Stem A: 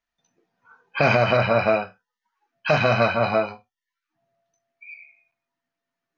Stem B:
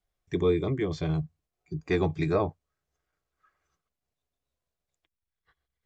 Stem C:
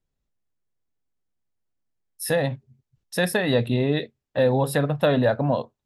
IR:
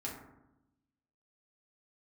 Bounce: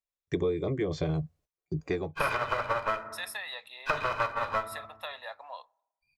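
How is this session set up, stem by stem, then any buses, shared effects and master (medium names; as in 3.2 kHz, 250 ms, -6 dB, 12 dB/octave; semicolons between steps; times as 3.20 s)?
-2.5 dB, 1.20 s, send -8 dB, comb filter that takes the minimum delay 2 ms; peaking EQ 1.2 kHz +10.5 dB 0.76 oct; upward expansion 2.5:1, over -35 dBFS
+2.5 dB, 0.00 s, no send, gate -58 dBFS, range -25 dB; peaking EQ 540 Hz +8.5 dB 0.58 oct; auto duck -21 dB, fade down 0.35 s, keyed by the third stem
-9.0 dB, 0.00 s, send -23.5 dB, high-pass 920 Hz 24 dB/octave; comb of notches 1.5 kHz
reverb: on, RT60 0.90 s, pre-delay 4 ms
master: compression 6:1, threshold -26 dBFS, peak gain reduction 12.5 dB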